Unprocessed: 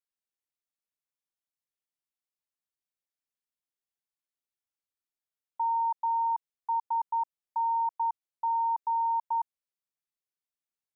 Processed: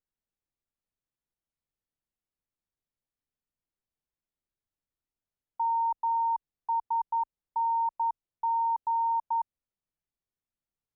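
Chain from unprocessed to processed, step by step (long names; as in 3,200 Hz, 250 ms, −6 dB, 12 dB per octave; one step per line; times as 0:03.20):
spectral tilt −3.5 dB per octave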